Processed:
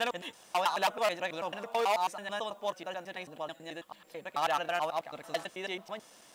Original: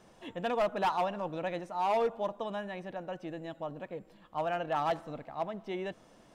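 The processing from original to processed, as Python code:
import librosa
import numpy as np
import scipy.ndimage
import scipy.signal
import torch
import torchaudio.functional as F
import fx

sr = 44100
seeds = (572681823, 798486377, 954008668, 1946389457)

y = fx.block_reorder(x, sr, ms=109.0, group=5)
y = fx.tilt_eq(y, sr, slope=4.0)
y = y * librosa.db_to_amplitude(2.0)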